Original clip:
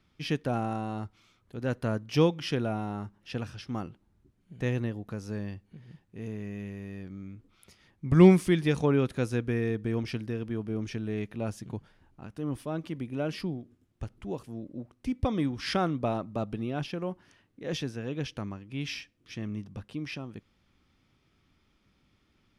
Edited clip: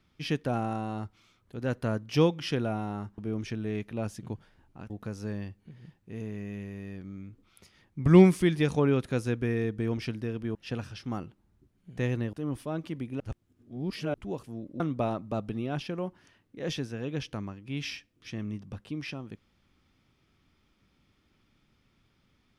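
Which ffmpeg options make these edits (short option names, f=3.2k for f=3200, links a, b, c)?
-filter_complex "[0:a]asplit=8[a][b][c][d][e][f][g][h];[a]atrim=end=3.182[i];[b]atrim=start=10.608:end=12.332[j];[c]atrim=start=4.958:end=10.612[k];[d]atrim=start=3.178:end=4.962[l];[e]atrim=start=12.328:end=13.202[m];[f]atrim=start=13.198:end=14.142,asetpts=PTS-STARTPTS,areverse[n];[g]atrim=start=14.138:end=14.802[o];[h]atrim=start=15.838[p];[i][j]acrossfade=d=0.004:c1=hsin:c2=hsin[q];[q][k]acrossfade=d=0.004:c1=hsin:c2=hsin[r];[r][l]acrossfade=d=0.004:c1=hsin:c2=hsin[s];[s][m]acrossfade=d=0.004:c1=hsin:c2=hsin[t];[t][n]acrossfade=d=0.004:c1=hsin:c2=hsin[u];[u][o]acrossfade=d=0.004:c1=hsin:c2=hsin[v];[v][p]acrossfade=d=0.004:c1=hsin:c2=hsin"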